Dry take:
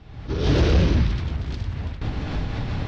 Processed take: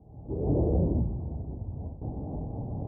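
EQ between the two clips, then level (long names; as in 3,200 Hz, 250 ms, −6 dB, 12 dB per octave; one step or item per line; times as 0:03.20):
high-pass filter 98 Hz 6 dB per octave
Butterworth low-pass 820 Hz 48 dB per octave
−4.5 dB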